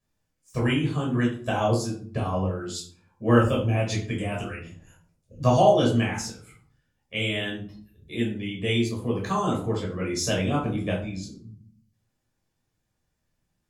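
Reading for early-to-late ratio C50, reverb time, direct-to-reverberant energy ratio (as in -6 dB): 6.5 dB, 0.50 s, -3.5 dB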